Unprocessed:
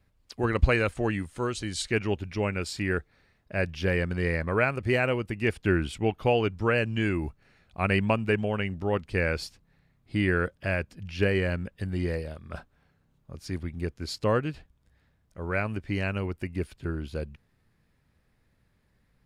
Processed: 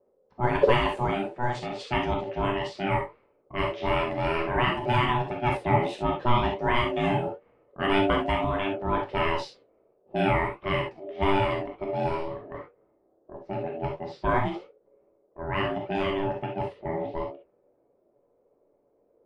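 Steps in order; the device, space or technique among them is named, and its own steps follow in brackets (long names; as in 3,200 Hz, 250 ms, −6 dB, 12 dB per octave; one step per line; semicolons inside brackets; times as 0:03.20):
0:05.16–0:05.74: notch filter 2,500 Hz, Q 5.3
low-pass that shuts in the quiet parts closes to 570 Hz, open at −22.5 dBFS
high-shelf EQ 4,600 Hz −5.5 dB
alien voice (ring modulation 490 Hz; flanger 1.5 Hz, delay 10 ms, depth 10 ms, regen +59%)
reverb whose tail is shaped and stops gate 90 ms flat, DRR 0.5 dB
level +5.5 dB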